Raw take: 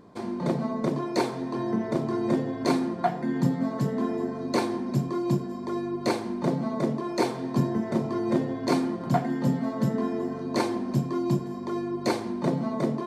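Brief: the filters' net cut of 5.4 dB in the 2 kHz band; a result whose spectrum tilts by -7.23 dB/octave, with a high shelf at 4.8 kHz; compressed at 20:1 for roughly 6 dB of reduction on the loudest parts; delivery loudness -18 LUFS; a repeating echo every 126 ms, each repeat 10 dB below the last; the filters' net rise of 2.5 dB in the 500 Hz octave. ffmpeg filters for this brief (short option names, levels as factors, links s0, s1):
-af "equalizer=f=500:t=o:g=4,equalizer=f=2000:t=o:g=-8,highshelf=f=4800:g=5,acompressor=threshold=0.0708:ratio=20,aecho=1:1:126|252|378|504:0.316|0.101|0.0324|0.0104,volume=3.35"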